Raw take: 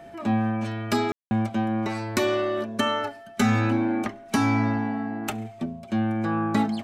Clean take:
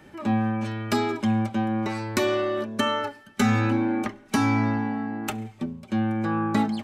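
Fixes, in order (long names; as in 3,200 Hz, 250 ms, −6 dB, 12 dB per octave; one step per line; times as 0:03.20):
notch filter 680 Hz, Q 30
ambience match 0:01.12–0:01.31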